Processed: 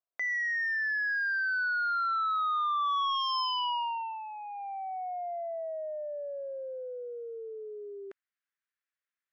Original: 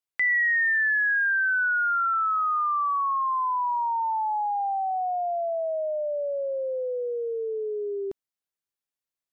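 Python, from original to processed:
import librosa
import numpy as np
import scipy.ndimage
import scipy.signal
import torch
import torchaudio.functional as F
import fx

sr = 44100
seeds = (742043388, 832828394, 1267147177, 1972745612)

y = fx.filter_sweep_bandpass(x, sr, from_hz=700.0, to_hz=1700.0, start_s=2.77, end_s=4.19, q=2.5)
y = fx.cheby_harmonics(y, sr, harmonics=(5,), levels_db=(-7,), full_scale_db=-22.0)
y = fx.peak_eq(y, sr, hz=850.0, db=-10.5, octaves=0.25)
y = y * 10.0 ** (-2.0 / 20.0)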